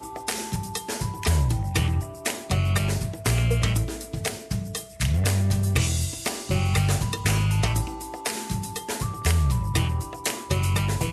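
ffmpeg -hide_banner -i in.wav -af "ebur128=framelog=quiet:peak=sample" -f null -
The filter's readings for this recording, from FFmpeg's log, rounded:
Integrated loudness:
  I:         -25.6 LUFS
  Threshold: -35.6 LUFS
Loudness range:
  LRA:         2.1 LU
  Threshold: -45.4 LUFS
  LRA low:   -26.3 LUFS
  LRA high:  -24.2 LUFS
Sample peak:
  Peak:       -8.2 dBFS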